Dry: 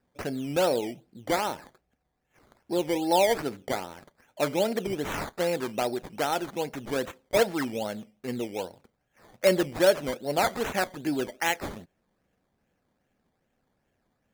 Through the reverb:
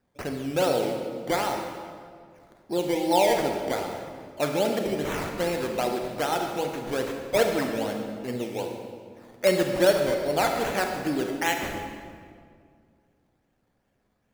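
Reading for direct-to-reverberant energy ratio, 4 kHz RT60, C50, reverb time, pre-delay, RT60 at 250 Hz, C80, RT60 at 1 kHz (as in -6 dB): 3.0 dB, 1.4 s, 4.0 dB, 2.1 s, 33 ms, 2.6 s, 5.0 dB, 1.9 s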